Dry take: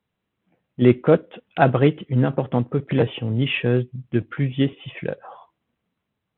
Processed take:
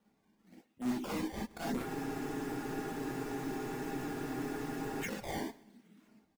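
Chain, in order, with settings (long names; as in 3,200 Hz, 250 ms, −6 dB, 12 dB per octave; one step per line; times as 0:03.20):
harmonic generator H 2 −8 dB, 5 −34 dB, 8 −14 dB, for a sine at −2.5 dBFS
low shelf with overshoot 140 Hz −13.5 dB, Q 3
automatic gain control gain up to 9 dB
volume swells 436 ms
brickwall limiter −24.5 dBFS, peak gain reduction 20.5 dB
hard clipping −39 dBFS, distortion −5 dB
reverb reduction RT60 0.81 s
sample-and-hold swept by an LFO 19×, swing 160% 0.98 Hz
repeating echo 133 ms, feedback 40%, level −21.5 dB
reverb whose tail is shaped and stops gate 80 ms rising, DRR −4 dB
frozen spectrum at 0:01.88, 3.14 s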